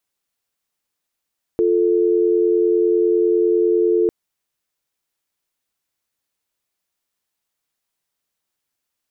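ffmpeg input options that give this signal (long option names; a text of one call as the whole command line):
ffmpeg -f lavfi -i "aevalsrc='0.158*(sin(2*PI*350*t)+sin(2*PI*440*t))':duration=2.5:sample_rate=44100" out.wav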